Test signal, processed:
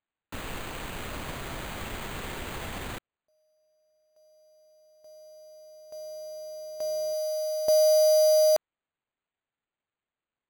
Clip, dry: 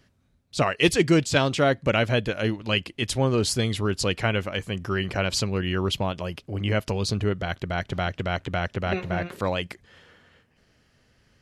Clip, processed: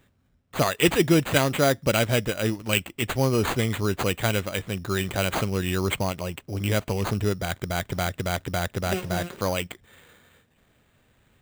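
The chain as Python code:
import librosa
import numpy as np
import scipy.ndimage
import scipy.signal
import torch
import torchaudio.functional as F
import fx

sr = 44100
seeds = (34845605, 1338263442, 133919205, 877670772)

y = fx.sample_hold(x, sr, seeds[0], rate_hz=5400.0, jitter_pct=0)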